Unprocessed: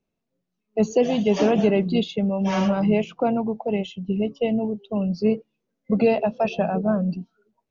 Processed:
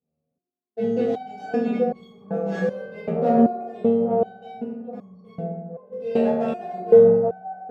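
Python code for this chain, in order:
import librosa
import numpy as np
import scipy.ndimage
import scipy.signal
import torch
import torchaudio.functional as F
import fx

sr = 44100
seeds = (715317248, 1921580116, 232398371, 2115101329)

y = fx.wiener(x, sr, points=25)
y = scipy.signal.sosfilt(scipy.signal.butter(2, 44.0, 'highpass', fs=sr, output='sos'), y)
y = fx.echo_wet_bandpass(y, sr, ms=822, feedback_pct=39, hz=650.0, wet_db=-4)
y = fx.rev_fdn(y, sr, rt60_s=1.2, lf_ratio=1.5, hf_ratio=0.4, size_ms=12.0, drr_db=-8.5)
y = fx.resonator_held(y, sr, hz=2.6, low_hz=79.0, high_hz=1100.0)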